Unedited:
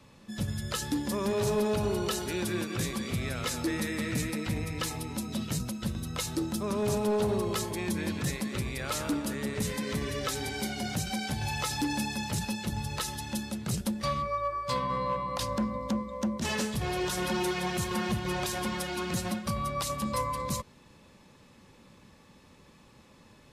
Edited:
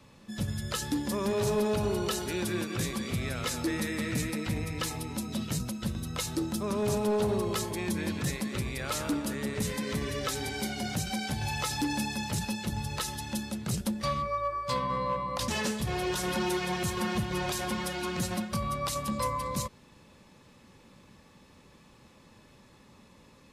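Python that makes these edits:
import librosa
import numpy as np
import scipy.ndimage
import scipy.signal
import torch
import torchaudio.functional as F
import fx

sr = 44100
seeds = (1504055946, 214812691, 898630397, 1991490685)

y = fx.edit(x, sr, fx.cut(start_s=15.48, length_s=0.94), tone=tone)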